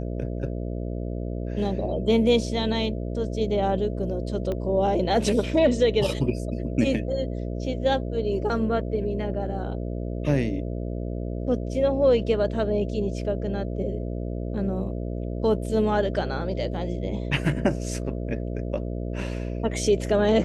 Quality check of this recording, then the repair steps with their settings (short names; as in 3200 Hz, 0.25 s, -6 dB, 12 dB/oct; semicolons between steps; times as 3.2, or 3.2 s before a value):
buzz 60 Hz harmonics 11 -30 dBFS
4.52 pop -18 dBFS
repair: de-click; de-hum 60 Hz, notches 11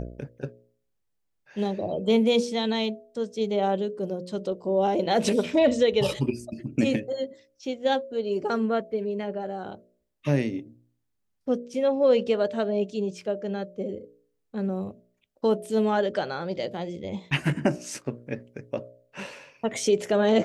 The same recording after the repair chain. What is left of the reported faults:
4.52 pop